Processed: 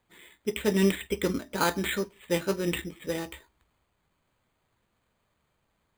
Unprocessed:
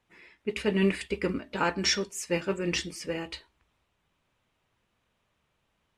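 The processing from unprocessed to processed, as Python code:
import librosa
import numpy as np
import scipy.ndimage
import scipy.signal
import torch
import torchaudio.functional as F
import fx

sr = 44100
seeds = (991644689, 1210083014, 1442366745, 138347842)

y = np.repeat(scipy.signal.resample_poly(x, 1, 8), 8)[:len(x)]
y = y * librosa.db_to_amplitude(1.5)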